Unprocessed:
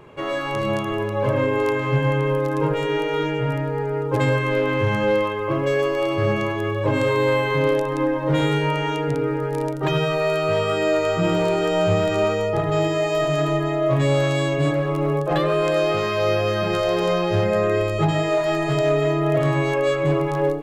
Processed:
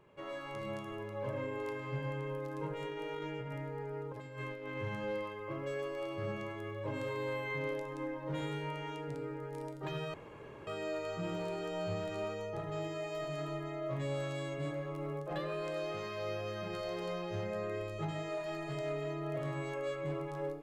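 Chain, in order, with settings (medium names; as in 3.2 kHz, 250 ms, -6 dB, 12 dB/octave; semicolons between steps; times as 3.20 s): feedback comb 190 Hz, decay 0.7 s, harmonics odd, mix 80%; 2.80–4.77 s: compressor with a negative ratio -36 dBFS, ratio -0.5; 10.14–10.67 s: room tone; trim -5 dB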